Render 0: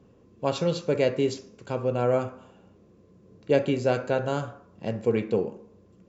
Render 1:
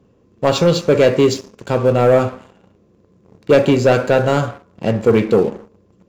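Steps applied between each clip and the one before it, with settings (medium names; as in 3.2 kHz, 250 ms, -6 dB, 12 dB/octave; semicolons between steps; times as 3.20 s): waveshaping leveller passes 2; trim +6 dB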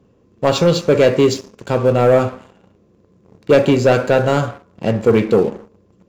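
no audible change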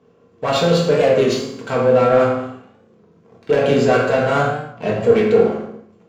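overdrive pedal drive 17 dB, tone 2.8 kHz, clips at -3 dBFS; reverberation, pre-delay 3 ms, DRR -3 dB; warped record 33 1/3 rpm, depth 100 cents; trim -9 dB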